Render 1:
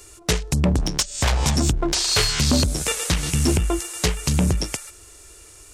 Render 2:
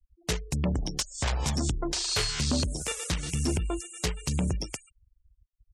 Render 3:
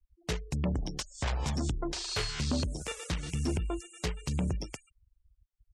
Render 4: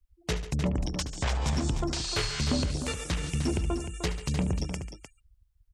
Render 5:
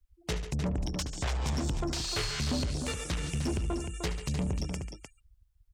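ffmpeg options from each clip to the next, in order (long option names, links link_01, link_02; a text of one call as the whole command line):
ffmpeg -i in.wav -af "afftfilt=real='re*gte(hypot(re,im),0.0282)':imag='im*gte(hypot(re,im),0.0282)':win_size=1024:overlap=0.75,volume=-8.5dB" out.wav
ffmpeg -i in.wav -af "highshelf=frequency=5900:gain=-10,volume=-3dB" out.wav
ffmpeg -i in.wav -af "aecho=1:1:75|141|304:0.211|0.188|0.355,volume=3dB" out.wav
ffmpeg -i in.wav -af "asoftclip=type=tanh:threshold=-25.5dB" out.wav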